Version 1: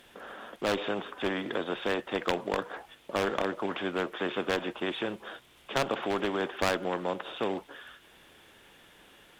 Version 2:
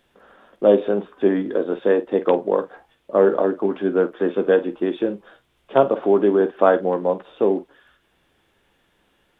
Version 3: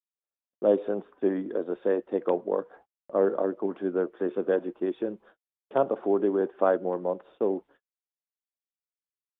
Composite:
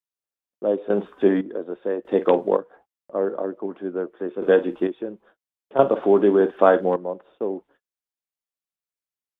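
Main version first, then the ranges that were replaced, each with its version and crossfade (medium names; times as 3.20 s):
3
0.90–1.41 s: from 2
2.05–2.57 s: from 2
4.42–4.87 s: from 2
5.79–6.96 s: from 2
not used: 1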